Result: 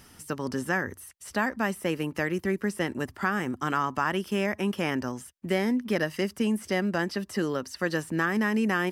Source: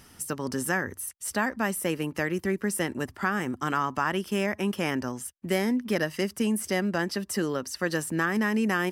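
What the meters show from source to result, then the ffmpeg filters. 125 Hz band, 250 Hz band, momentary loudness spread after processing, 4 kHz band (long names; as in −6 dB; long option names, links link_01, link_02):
0.0 dB, 0.0 dB, 6 LU, −1.0 dB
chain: -filter_complex "[0:a]acrossover=split=4800[link_01][link_02];[link_02]acompressor=threshold=-44dB:ratio=4:attack=1:release=60[link_03];[link_01][link_03]amix=inputs=2:normalize=0"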